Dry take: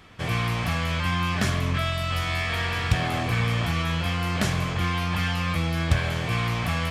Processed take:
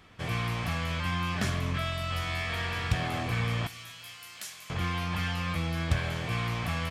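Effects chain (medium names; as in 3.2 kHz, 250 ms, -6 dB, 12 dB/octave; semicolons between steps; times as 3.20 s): 3.67–4.70 s: differentiator; on a send: feedback delay 247 ms, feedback 43%, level -23 dB; on the sum: trim -5.5 dB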